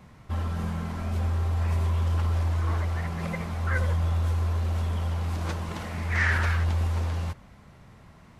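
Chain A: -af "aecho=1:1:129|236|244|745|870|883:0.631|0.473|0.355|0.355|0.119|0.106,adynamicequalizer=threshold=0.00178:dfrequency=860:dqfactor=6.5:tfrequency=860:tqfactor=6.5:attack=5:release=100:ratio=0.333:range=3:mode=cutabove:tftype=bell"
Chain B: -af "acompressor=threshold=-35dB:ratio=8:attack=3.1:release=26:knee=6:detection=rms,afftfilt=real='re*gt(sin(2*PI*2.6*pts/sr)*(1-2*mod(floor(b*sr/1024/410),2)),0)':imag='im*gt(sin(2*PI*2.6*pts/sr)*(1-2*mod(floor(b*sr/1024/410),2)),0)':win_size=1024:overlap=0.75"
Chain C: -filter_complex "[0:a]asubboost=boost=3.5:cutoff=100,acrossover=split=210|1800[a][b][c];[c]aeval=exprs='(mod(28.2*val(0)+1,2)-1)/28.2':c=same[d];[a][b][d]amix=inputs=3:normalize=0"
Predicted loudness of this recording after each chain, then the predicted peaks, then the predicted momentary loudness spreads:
-26.5, -41.5, -23.5 LUFS; -10.5, -28.5, -11.0 dBFS; 10, 9, 10 LU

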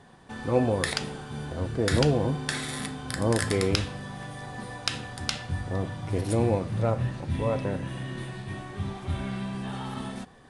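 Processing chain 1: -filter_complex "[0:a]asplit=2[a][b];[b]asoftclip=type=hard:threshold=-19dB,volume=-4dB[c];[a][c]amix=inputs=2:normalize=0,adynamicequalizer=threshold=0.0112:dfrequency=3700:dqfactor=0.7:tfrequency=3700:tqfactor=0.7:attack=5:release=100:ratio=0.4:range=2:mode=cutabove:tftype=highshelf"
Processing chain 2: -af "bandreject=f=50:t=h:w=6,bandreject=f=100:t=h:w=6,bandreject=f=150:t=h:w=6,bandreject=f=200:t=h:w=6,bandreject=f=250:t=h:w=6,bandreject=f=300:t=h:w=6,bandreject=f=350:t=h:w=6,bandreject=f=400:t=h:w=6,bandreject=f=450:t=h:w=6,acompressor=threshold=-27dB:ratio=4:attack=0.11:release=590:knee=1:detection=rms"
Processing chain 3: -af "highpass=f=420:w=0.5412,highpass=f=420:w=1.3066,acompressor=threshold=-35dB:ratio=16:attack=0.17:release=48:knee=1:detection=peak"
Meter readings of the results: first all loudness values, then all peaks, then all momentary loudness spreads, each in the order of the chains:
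-25.5, -37.5, -42.0 LUFS; -5.5, -21.5, -30.0 dBFS; 12, 9, 2 LU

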